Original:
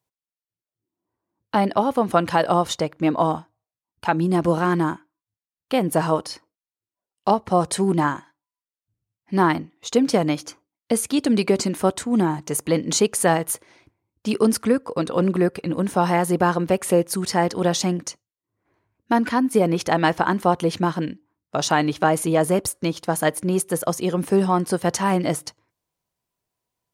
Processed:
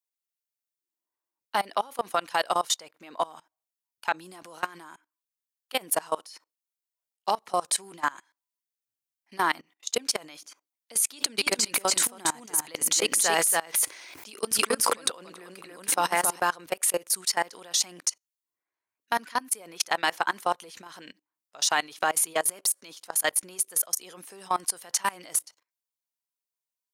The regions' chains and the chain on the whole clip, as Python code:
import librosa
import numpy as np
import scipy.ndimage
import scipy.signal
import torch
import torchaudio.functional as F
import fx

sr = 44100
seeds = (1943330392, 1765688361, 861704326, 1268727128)

y = fx.chain(x, sr, fx.echo_single(ms=282, db=-4.0),
    fx.sustainer(db_per_s=20.0), at=(11.1, 16.4))
y = fx.highpass(y, sr, hz=720.0, slope=6)
y = fx.tilt_eq(y, sr, slope=3.0)
y = fx.level_steps(y, sr, step_db=23)